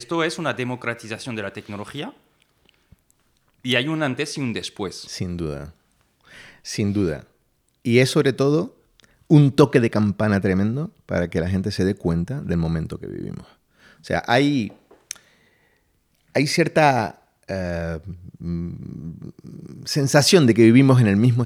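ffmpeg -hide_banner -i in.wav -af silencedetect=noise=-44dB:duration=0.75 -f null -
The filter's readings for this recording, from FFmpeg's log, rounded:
silence_start: 15.18
silence_end: 16.35 | silence_duration: 1.17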